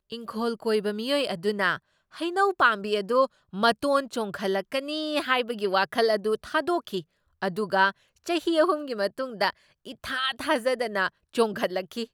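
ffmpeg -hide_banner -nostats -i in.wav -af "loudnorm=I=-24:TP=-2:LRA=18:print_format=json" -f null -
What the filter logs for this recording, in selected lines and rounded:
"input_i" : "-26.5",
"input_tp" : "-7.2",
"input_lra" : "2.7",
"input_thresh" : "-36.8",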